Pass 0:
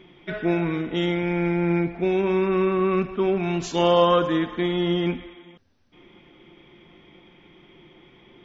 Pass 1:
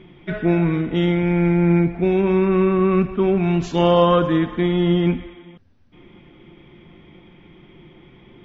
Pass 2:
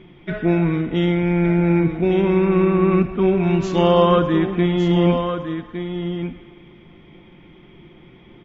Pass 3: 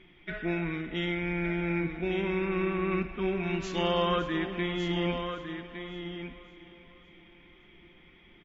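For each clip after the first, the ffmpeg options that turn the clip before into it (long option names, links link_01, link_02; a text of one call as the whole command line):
ffmpeg -i in.wav -af "bass=frequency=250:gain=8,treble=frequency=4000:gain=-8,volume=2dB" out.wav
ffmpeg -i in.wav -af "aecho=1:1:1160:0.398" out.wav
ffmpeg -i in.wav -af "equalizer=frequency=125:width_type=o:width=1:gain=-12,equalizer=frequency=250:width_type=o:width=1:gain=-5,equalizer=frequency=500:width_type=o:width=1:gain=-6,equalizer=frequency=1000:width_type=o:width=1:gain=-5,equalizer=frequency=2000:width_type=o:width=1:gain=4,aecho=1:1:561|1122|1683|2244|2805:0.141|0.0735|0.0382|0.0199|0.0103,volume=-6dB" out.wav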